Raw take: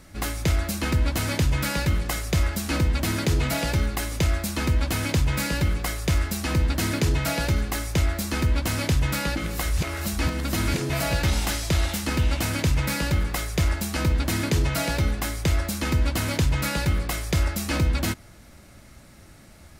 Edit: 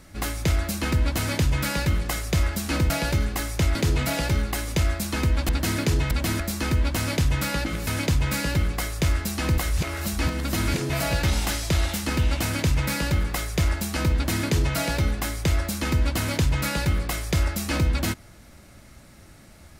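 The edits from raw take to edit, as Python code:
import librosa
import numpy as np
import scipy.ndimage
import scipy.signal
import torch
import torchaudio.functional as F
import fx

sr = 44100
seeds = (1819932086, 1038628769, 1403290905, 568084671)

y = fx.edit(x, sr, fx.swap(start_s=2.9, length_s=0.29, other_s=7.26, other_length_s=0.85),
    fx.move(start_s=4.93, length_s=1.71, to_s=9.58), tone=tone)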